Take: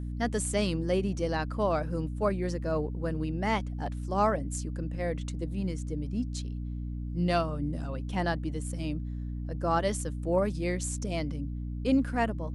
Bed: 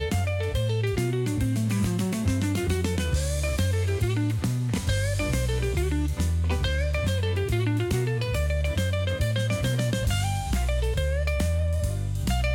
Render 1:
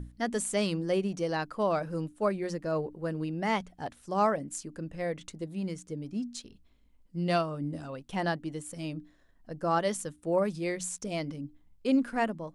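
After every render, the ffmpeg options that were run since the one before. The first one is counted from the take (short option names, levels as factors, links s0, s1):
-af "bandreject=f=60:t=h:w=6,bandreject=f=120:t=h:w=6,bandreject=f=180:t=h:w=6,bandreject=f=240:t=h:w=6,bandreject=f=300:t=h:w=6"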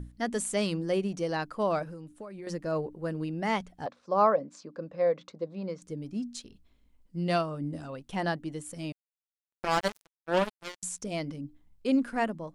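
-filter_complex "[0:a]asettb=1/sr,asplit=3[s0][s1][s2];[s0]atrim=end=1.834[s3];[s1]atrim=start=1.83:end=2.47,asetpts=PTS-STARTPTS,afade=t=in:d=0.004:c=qsin,afade=t=out:st=0.636:d=0.004:c=qsin,acompressor=threshold=0.0126:ratio=20:attack=3.2:release=140:knee=1:detection=peak[s4];[s2]atrim=start=2.466[s5];[s3][s4]acrossfade=d=0.004:c1=hsin:c2=qsin[s6];[s6][s5]acrossfade=d=0.004:c1=qsin:c2=hsin,asettb=1/sr,asplit=3[s7][s8][s9];[s7]atrim=end=3.864[s10];[s8]atrim=start=3.86:end=5.82,asetpts=PTS-STARTPTS,afade=t=in:d=0.004:c=qsin,afade=t=out:st=1.956:d=0.004:c=qsin,highpass=200,equalizer=f=320:t=q:w=4:g=-4,equalizer=f=530:t=q:w=4:g=10,equalizer=f=1100:t=q:w=4:g=7,equalizer=f=1900:t=q:w=4:g=-5,equalizer=f=3000:t=q:w=4:g=-8,lowpass=f=4900:w=0.5412,lowpass=f=4900:w=1.3066[s11];[s9]atrim=start=5.816[s12];[s10][s11]acrossfade=d=0.004:c1=hsin:c2=qsin[s13];[s13][s12]acrossfade=d=0.004:c1=qsin:c2=hsin,asettb=1/sr,asplit=3[s14][s15][s16];[s14]atrim=end=8.924[s17];[s15]atrim=start=8.92:end=10.83,asetpts=PTS-STARTPTS,afade=t=in:d=0.004:c=qsin,afade=t=out:st=1.906:d=0.004:c=qsin,acrusher=bits=3:mix=0:aa=0.5[s18];[s16]atrim=start=10.826[s19];[s17][s18]acrossfade=d=0.004:c1=hsin:c2=qsin[s20];[s20][s19]acrossfade=d=0.004:c1=qsin:c2=hsin"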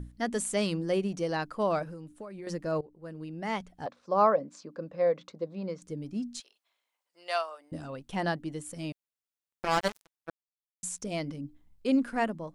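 -filter_complex "[0:a]asettb=1/sr,asplit=3[s0][s1][s2];[s0]atrim=end=6.404[s3];[s1]atrim=start=6.4:end=7.72,asetpts=PTS-STARTPTS,afade=t=in:d=0.004:c=qsin,afade=t=out:st=1.316:d=0.004:c=qsin,highpass=f=650:w=0.5412,highpass=f=650:w=1.3066[s4];[s2]atrim=start=7.716[s5];[s3][s4]acrossfade=d=0.004:c1=hsin:c2=qsin[s6];[s6][s5]acrossfade=d=0.004:c1=qsin:c2=hsin,asplit=4[s7][s8][s9][s10];[s7]atrim=end=2.81,asetpts=PTS-STARTPTS,afade=t=out:st=2.806:d=0.004:c=hsin:silence=0.141254[s11];[s8]atrim=start=2.81:end=10.3,asetpts=PTS-STARTPTS,afade=t=in:d=1.21:silence=0.141254,afade=t=out:st=7.486:d=0.004:c=hsin[s12];[s9]atrim=start=10.3:end=10.83,asetpts=PTS-STARTPTS,volume=0[s13];[s10]atrim=start=10.83,asetpts=PTS-STARTPTS,afade=t=in:d=0.004:c=hsin[s14];[s11][s12][s13][s14]concat=n=4:v=0:a=1"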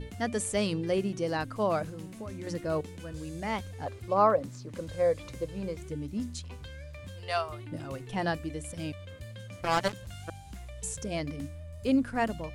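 -filter_complex "[1:a]volume=0.119[s0];[0:a][s0]amix=inputs=2:normalize=0"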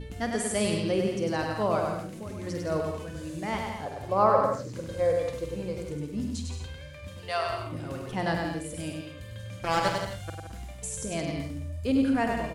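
-filter_complex "[0:a]asplit=2[s0][s1];[s1]adelay=48,volume=0.316[s2];[s0][s2]amix=inputs=2:normalize=0,aecho=1:1:100|170|219|253.3|277.3:0.631|0.398|0.251|0.158|0.1"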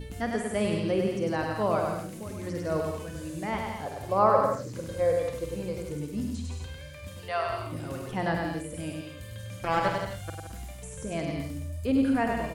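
-filter_complex "[0:a]acrossover=split=2800[s0][s1];[s1]acompressor=threshold=0.00224:ratio=4:attack=1:release=60[s2];[s0][s2]amix=inputs=2:normalize=0,highshelf=f=7300:g=12"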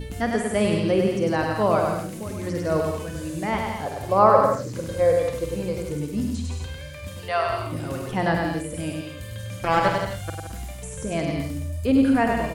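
-af "volume=2"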